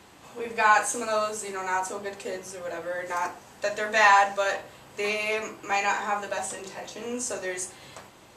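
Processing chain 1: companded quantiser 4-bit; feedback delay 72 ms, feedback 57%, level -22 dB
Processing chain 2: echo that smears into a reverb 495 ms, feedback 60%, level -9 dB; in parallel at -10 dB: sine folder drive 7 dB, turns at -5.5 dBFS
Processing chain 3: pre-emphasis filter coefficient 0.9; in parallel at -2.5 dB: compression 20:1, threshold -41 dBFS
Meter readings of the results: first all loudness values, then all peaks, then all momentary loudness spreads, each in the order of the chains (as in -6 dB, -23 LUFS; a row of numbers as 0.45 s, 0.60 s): -26.0 LUFS, -20.5 LUFS, -35.0 LUFS; -5.5 dBFS, -6.5 dBFS, -15.0 dBFS; 16 LU, 12 LU, 13 LU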